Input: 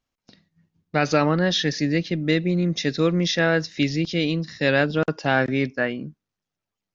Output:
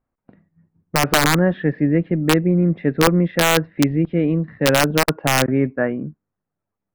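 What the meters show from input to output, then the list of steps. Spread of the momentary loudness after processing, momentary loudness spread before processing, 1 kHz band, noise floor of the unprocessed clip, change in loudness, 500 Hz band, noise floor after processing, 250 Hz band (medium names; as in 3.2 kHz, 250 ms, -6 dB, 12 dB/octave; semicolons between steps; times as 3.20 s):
5 LU, 5 LU, +6.0 dB, under -85 dBFS, +4.0 dB, +3.0 dB, -83 dBFS, +4.5 dB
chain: Bessel low-pass 1.2 kHz, order 6; integer overflow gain 12 dB; trim +5.5 dB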